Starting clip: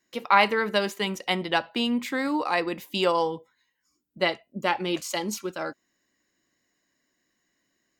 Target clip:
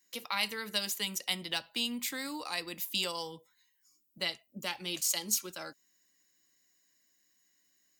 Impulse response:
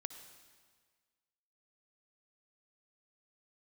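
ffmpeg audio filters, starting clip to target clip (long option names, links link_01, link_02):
-filter_complex "[0:a]bandreject=frequency=390:width=12,crystalizer=i=5:c=0,acrossover=split=190|3000[link_01][link_02][link_03];[link_02]acompressor=threshold=-35dB:ratio=2[link_04];[link_01][link_04][link_03]amix=inputs=3:normalize=0,volume=-9dB"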